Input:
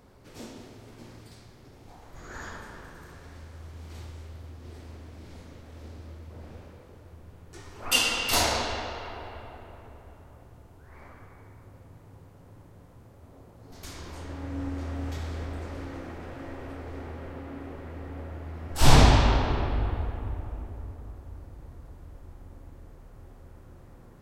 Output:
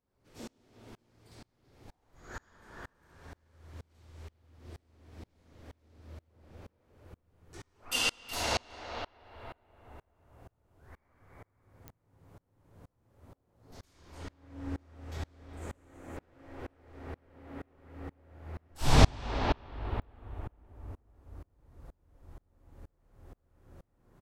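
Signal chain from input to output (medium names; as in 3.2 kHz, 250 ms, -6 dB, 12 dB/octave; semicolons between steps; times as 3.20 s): 15.57–16.17 s: resonant high shelf 6.1 kHz +6.5 dB, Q 3; speakerphone echo 370 ms, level -6 dB; clicks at 11.88/20.02 s, -27 dBFS; sawtooth tremolo in dB swelling 2.1 Hz, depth 32 dB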